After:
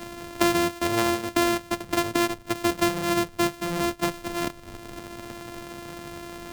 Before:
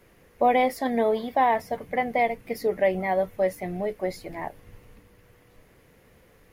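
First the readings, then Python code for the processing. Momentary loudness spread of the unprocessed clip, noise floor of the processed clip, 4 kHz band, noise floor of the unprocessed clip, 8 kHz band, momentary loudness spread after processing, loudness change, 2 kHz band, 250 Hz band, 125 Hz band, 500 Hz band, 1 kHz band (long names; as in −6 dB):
10 LU, −45 dBFS, +12.5 dB, −58 dBFS, can't be measured, 15 LU, 0.0 dB, +2.5 dB, +6.0 dB, +5.5 dB, −3.0 dB, −3.5 dB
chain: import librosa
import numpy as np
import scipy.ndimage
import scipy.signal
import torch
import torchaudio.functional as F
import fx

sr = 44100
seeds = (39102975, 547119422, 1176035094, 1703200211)

y = np.r_[np.sort(x[:len(x) // 128 * 128].reshape(-1, 128), axis=1).ravel(), x[len(x) // 128 * 128:]]
y = fx.band_squash(y, sr, depth_pct=70)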